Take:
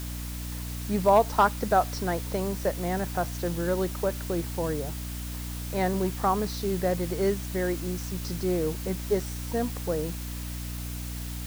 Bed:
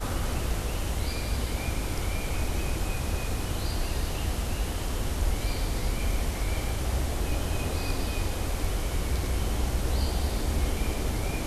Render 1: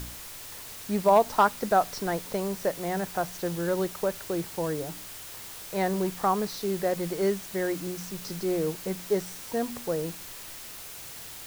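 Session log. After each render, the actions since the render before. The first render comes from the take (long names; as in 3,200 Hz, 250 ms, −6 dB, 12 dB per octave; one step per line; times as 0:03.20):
hum removal 60 Hz, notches 5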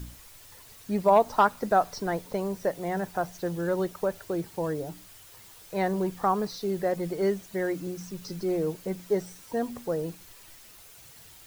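broadband denoise 10 dB, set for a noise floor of −42 dBFS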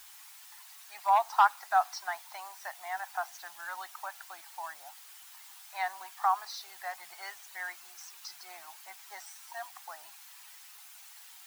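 elliptic high-pass filter 770 Hz, stop band 40 dB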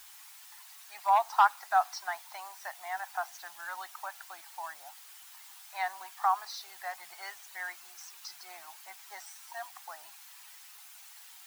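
no processing that can be heard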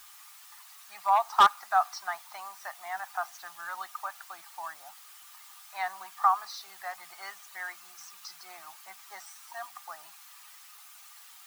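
hollow resonant body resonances 210/1,200 Hz, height 13 dB, ringing for 45 ms
wave folding −11 dBFS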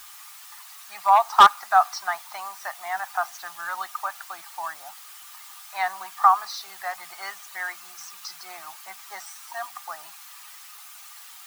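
level +7 dB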